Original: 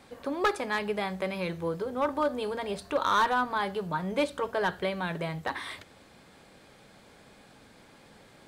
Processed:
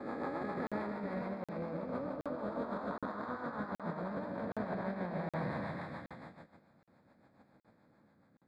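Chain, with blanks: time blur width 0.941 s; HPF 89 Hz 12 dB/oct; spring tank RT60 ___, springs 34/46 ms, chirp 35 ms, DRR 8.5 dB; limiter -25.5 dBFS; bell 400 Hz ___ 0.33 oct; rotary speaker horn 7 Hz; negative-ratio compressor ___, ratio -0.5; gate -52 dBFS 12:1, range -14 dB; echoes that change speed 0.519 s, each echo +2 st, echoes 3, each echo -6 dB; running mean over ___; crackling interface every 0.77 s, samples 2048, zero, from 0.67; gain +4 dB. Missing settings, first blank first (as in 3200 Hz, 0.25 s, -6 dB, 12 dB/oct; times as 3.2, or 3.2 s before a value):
1.5 s, -10.5 dB, -42 dBFS, 15 samples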